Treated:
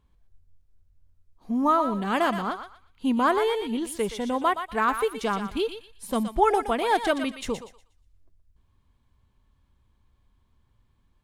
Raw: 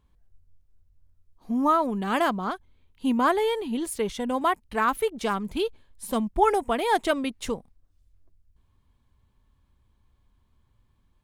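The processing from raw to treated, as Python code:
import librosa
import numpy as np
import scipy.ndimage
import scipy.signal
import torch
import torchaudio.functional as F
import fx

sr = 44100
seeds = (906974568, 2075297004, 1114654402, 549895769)

y = fx.high_shelf(x, sr, hz=11000.0, db=-6.5)
y = fx.echo_thinned(y, sr, ms=120, feedback_pct=30, hz=1000.0, wet_db=-6.5)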